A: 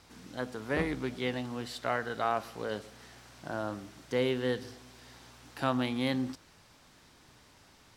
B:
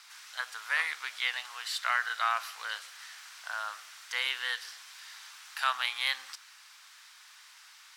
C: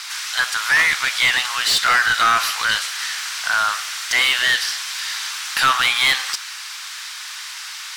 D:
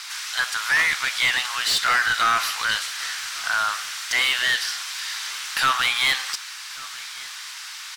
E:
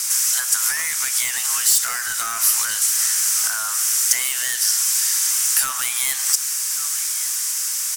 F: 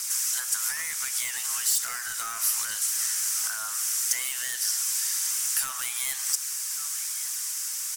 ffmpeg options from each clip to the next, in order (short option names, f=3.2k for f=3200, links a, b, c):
-af "highpass=f=1.2k:w=0.5412,highpass=f=1.2k:w=1.3066,volume=8dB"
-filter_complex "[0:a]highshelf=f=3.6k:g=7,asplit=2[a][b];[b]highpass=f=720:p=1,volume=22dB,asoftclip=type=tanh:threshold=-11dB[c];[a][c]amix=inputs=2:normalize=0,lowpass=f=5.7k:p=1,volume=-6dB,volume=4.5dB"
-af "aecho=1:1:1141:0.0891,volume=-4dB"
-af "acompressor=threshold=-26dB:ratio=4,aexciter=amount=11:drive=5.8:freq=5.8k,volume=-1dB"
-af "aphaser=in_gain=1:out_gain=1:delay=2.4:decay=0.2:speed=1.1:type=triangular,volume=-8.5dB"